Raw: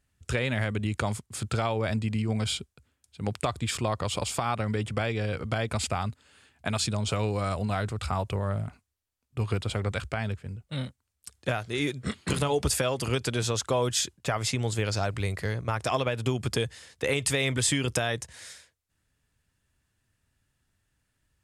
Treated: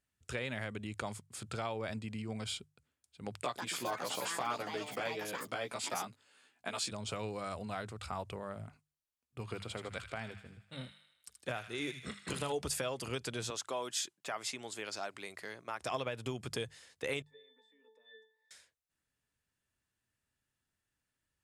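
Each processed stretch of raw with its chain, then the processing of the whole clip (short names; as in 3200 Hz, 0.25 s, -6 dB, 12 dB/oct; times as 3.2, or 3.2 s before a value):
3.42–6.92 HPF 220 Hz + doubler 16 ms -3 dB + echoes that change speed 0.152 s, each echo +6 st, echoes 2, each echo -6 dB
9.4–12.52 notches 50/100/150/200 Hz + thin delay 78 ms, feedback 58%, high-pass 1500 Hz, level -7.5 dB
13.5–15.81 HPF 300 Hz + bell 490 Hz -6 dB 0.31 oct
17.22–18.51 steep high-pass 290 Hz 48 dB/oct + compressor 3:1, threshold -28 dBFS + octave resonator A, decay 0.43 s
whole clip: low shelf 130 Hz -9.5 dB; notches 50/100/150 Hz; gain -9 dB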